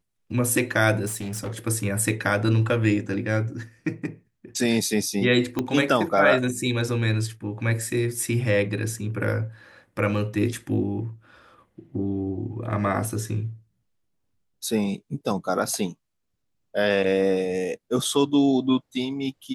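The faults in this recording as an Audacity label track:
1.060000	1.590000	clipped -27 dBFS
5.590000	5.590000	pop -12 dBFS

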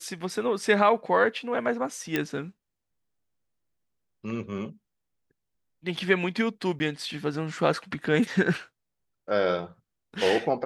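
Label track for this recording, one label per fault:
2.160000	2.160000	pop -12 dBFS
6.790000	6.800000	gap 10 ms

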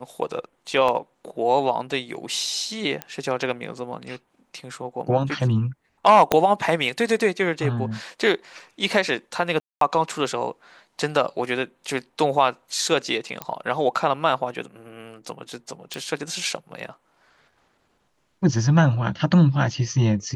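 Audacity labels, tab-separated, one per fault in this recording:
0.880000	0.880000	gap 4.2 ms
3.020000	3.020000	pop -13 dBFS
6.320000	6.320000	pop -3 dBFS
9.600000	9.810000	gap 0.213 s
13.420000	13.420000	pop -12 dBFS
15.940000	15.940000	pop

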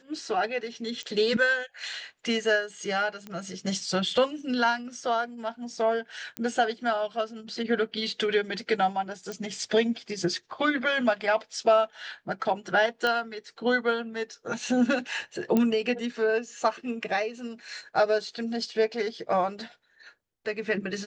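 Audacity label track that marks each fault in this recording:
1.030000	1.030000	pop -24 dBFS
3.270000	3.270000	pop -25 dBFS
6.370000	6.370000	pop -16 dBFS
9.320000	9.320000	pop -22 dBFS
13.070000	13.070000	pop -14 dBFS
15.570000	15.570000	pop -12 dBFS

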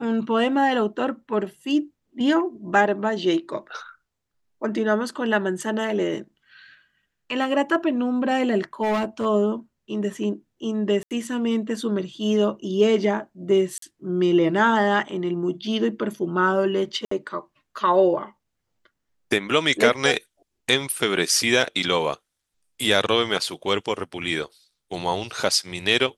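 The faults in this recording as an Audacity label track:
8.820000	9.260000	clipped -19.5 dBFS
11.030000	11.110000	gap 78 ms
13.780000	13.820000	gap 43 ms
17.050000	17.110000	gap 64 ms

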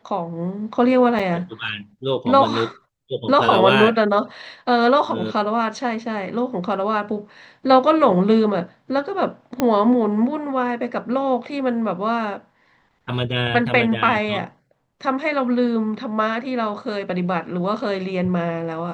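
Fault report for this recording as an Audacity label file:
1.190000	1.200000	gap 5 ms
9.600000	9.600000	pop -6 dBFS

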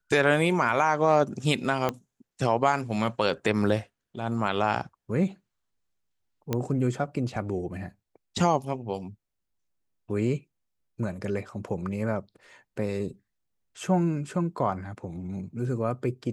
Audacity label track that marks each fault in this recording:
1.890000	1.890000	pop -13 dBFS
6.530000	6.530000	pop -13 dBFS

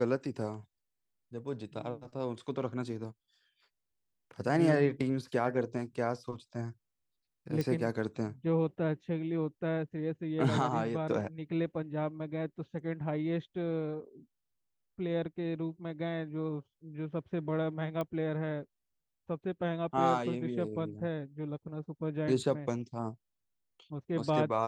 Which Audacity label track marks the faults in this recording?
7.610000	7.610000	pop
18.010000	18.010000	pop -23 dBFS

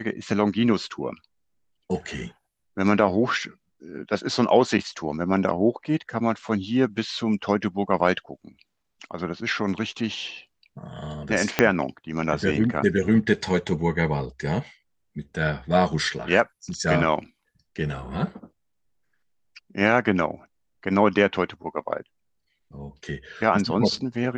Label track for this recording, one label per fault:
11.590000	11.590000	pop -3 dBFS

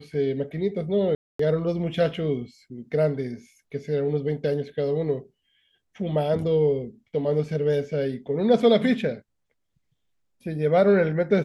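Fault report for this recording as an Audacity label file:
1.150000	1.390000	gap 0.244 s

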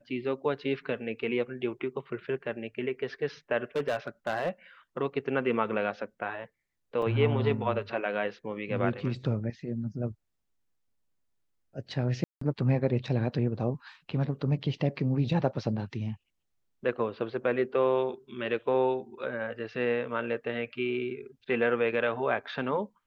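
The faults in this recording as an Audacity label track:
3.760000	4.490000	clipped -24 dBFS
7.020000	7.020000	gap 3.5 ms
12.240000	12.410000	gap 0.174 s

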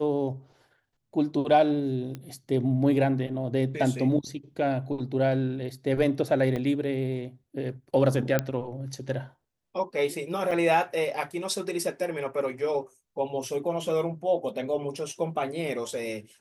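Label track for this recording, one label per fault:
2.150000	2.150000	pop -23 dBFS
6.560000	6.560000	gap 4.2 ms
8.390000	8.390000	pop -10 dBFS
10.510000	10.510000	gap 4.2 ms

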